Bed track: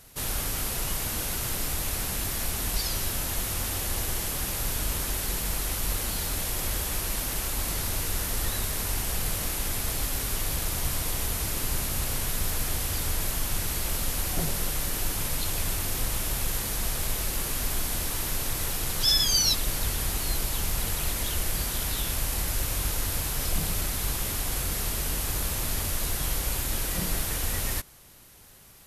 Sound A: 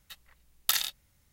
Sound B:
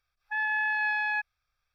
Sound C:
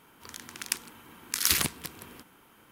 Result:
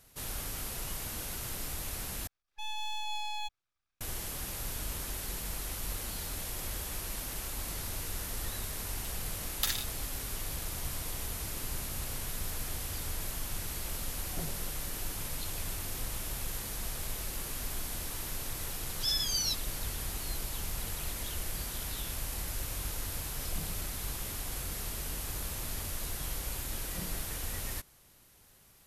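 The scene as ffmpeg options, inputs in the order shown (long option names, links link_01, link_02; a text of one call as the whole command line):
ffmpeg -i bed.wav -i cue0.wav -i cue1.wav -filter_complex "[0:a]volume=-8.5dB[link_01];[2:a]aeval=exprs='abs(val(0))':channel_layout=same[link_02];[1:a]aecho=1:1:7.2:0.62[link_03];[link_01]asplit=2[link_04][link_05];[link_04]atrim=end=2.274[link_06];[link_02]atrim=end=1.74,asetpts=PTS-STARTPTS,volume=-6.5dB[link_07];[link_05]atrim=start=4.006[link_08];[link_03]atrim=end=1.32,asetpts=PTS-STARTPTS,volume=-6.5dB,afade=type=in:duration=0.004:curve=hsin,afade=type=out:start_time=1.316:duration=0.004:curve=hsin,adelay=8940[link_09];[link_06][link_07]acrossfade=duration=0.004:curve1=hsin:curve2=hsin[link_10];[link_10][link_08]acrossfade=duration=0.004:curve1=hsin:curve2=hsin[link_11];[link_11][link_09]amix=inputs=2:normalize=0" out.wav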